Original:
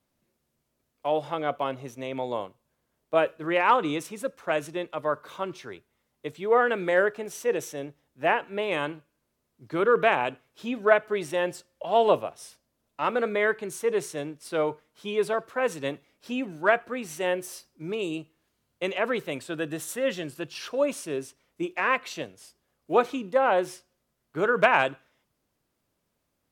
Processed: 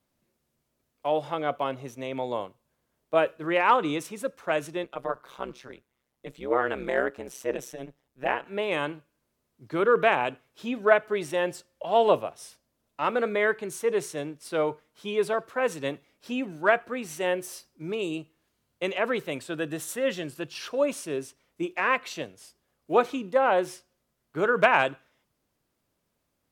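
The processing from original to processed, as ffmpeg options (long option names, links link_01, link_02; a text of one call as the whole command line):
ffmpeg -i in.wav -filter_complex "[0:a]asettb=1/sr,asplit=3[link_01][link_02][link_03];[link_01]atrim=end=4.844[link_04];[link_02]atrim=start=4.84:end=8.46,asetpts=PTS-STARTPTS,afade=type=in:duration=0.004:curve=qsin,afade=type=out:start_time=3.616:duration=0.004:curve=qsin,tremolo=f=130:d=0.974[link_05];[link_03]atrim=start=8.456[link_06];[link_04][link_05]acrossfade=duration=0.004:curve1=hsin:curve2=qsin[link_07];[link_07][link_06]acrossfade=duration=0.004:curve1=qsin:curve2=hsin" out.wav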